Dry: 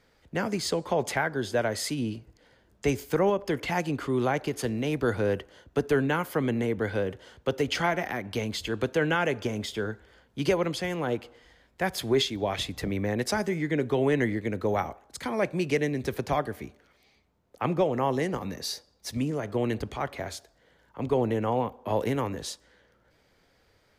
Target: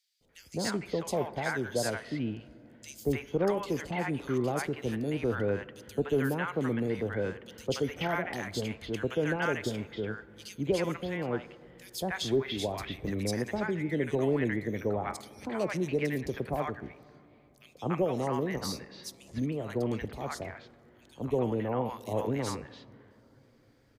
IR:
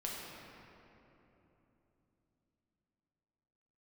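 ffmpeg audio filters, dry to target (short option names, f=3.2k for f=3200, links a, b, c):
-filter_complex "[0:a]acrossover=split=860|3200[a][b][c];[a]adelay=210[d];[b]adelay=290[e];[d][e][c]amix=inputs=3:normalize=0,asplit=2[f][g];[1:a]atrim=start_sample=2205,lowpass=3.5k[h];[g][h]afir=irnorm=-1:irlink=0,volume=-19dB[i];[f][i]amix=inputs=2:normalize=0,volume=-3.5dB"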